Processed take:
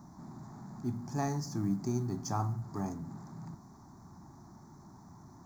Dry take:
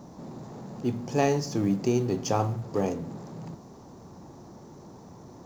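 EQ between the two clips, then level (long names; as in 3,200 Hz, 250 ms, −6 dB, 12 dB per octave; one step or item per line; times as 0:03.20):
dynamic equaliser 2,200 Hz, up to −4 dB, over −48 dBFS, Q 0.89
phaser with its sweep stopped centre 1,200 Hz, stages 4
−3.5 dB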